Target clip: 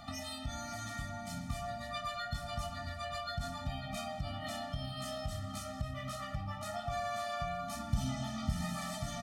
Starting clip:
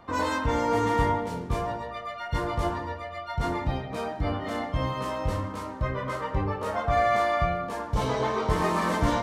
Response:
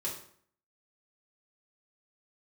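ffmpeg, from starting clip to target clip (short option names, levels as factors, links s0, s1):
-filter_complex "[0:a]firequalizer=gain_entry='entry(1100,0);entry(4200,10);entry(6200,13)':delay=0.05:min_phase=1,acompressor=threshold=0.0126:ratio=6,asettb=1/sr,asplit=3[s0][s1][s2];[s0]atrim=end=7.754[s3];[s1]atrim=start=7.75:end=8.75,asetpts=PTS-STARTPTS,afade=t=in:d=0.004:c=qsin,afade=t=out:st=0.996:d=0.004:c=qsin,lowshelf=f=420:t=q:w=3:g=6[s4];[s2]atrim=start=8.746[s5];[s3][s4]acrossfade=d=0.004:c1=hsin:c2=qsin[s6];[s6][s5]acrossfade=d=0.004:c1=qsin:c2=hsin,aecho=1:1:543:0.237,afftfilt=real='re*eq(mod(floor(b*sr/1024/290),2),0)':imag='im*eq(mod(floor(b*sr/1024/290),2),0)':win_size=1024:overlap=0.75,volume=1.33"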